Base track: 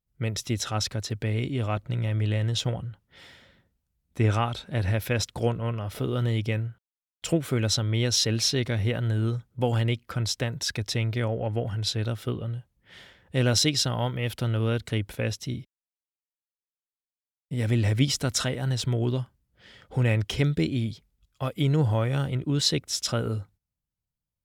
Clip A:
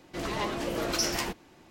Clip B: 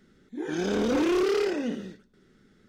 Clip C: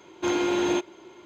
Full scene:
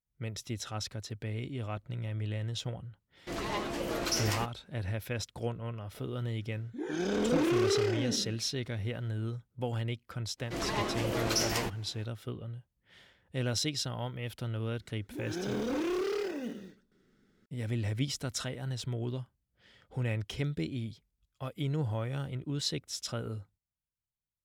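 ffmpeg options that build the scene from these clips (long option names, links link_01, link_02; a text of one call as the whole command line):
ffmpeg -i bed.wav -i cue0.wav -i cue1.wav -filter_complex "[1:a]asplit=2[link_01][link_02];[2:a]asplit=2[link_03][link_04];[0:a]volume=-9.5dB[link_05];[link_01]agate=range=-33dB:threshold=-46dB:ratio=3:release=100:detection=peak[link_06];[link_04]acrusher=bits=7:mode=log:mix=0:aa=0.000001[link_07];[link_06]atrim=end=1.7,asetpts=PTS-STARTPTS,volume=-3dB,afade=type=in:duration=0.004:curve=hsin,afade=type=out:start_time=1.696:duration=0.004:curve=hsin,adelay=138033S[link_08];[link_03]atrim=end=2.68,asetpts=PTS-STARTPTS,volume=-4dB,afade=type=in:duration=0.004:curve=hsin,afade=type=out:start_time=2.676:duration=0.004:curve=hsin,adelay=6410[link_09];[link_02]atrim=end=1.7,asetpts=PTS-STARTPTS,volume=-1.5dB,afade=type=in:duration=0.05,afade=type=out:start_time=1.65:duration=0.05,adelay=10370[link_10];[link_07]atrim=end=2.68,asetpts=PTS-STARTPTS,volume=-8dB,afade=type=in:duration=0.004:curve=hsin,afade=type=out:start_time=2.676:duration=0.004:curve=hsin,adelay=14780[link_11];[link_05][link_08][link_09][link_10][link_11]amix=inputs=5:normalize=0" out.wav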